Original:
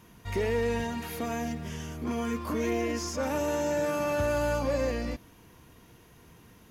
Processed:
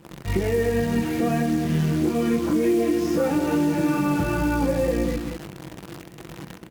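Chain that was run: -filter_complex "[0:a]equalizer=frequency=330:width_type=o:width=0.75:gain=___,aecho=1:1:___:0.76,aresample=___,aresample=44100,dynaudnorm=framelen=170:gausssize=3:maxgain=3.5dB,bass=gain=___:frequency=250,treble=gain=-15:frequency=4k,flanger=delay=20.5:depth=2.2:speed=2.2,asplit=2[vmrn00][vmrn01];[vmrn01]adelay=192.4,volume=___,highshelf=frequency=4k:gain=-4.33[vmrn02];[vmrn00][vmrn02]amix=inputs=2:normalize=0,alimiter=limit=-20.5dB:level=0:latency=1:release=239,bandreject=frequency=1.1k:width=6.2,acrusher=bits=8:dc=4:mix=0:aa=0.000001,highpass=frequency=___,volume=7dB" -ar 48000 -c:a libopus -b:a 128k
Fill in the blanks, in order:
8, 6, 32000, 8, -11dB, 59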